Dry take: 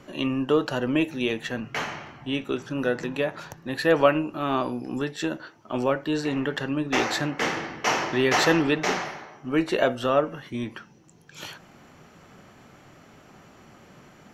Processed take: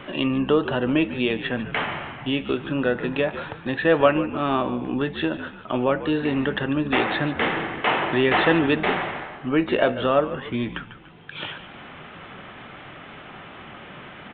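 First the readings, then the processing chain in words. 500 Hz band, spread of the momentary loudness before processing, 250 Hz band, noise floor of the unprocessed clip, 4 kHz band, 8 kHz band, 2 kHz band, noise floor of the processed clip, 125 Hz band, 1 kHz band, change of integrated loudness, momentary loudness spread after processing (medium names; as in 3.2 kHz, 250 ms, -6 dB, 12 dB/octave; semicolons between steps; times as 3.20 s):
+2.5 dB, 13 LU, +3.0 dB, -53 dBFS, +1.5 dB, under -40 dB, +3.0 dB, -42 dBFS, +3.5 dB, +2.5 dB, +2.5 dB, 21 LU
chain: frequency-shifting echo 145 ms, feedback 30%, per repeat -64 Hz, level -14.5 dB; in parallel at 0 dB: compression, threshold -30 dBFS, peak gain reduction 16.5 dB; on the sum: resampled via 8 kHz; tape noise reduction on one side only encoder only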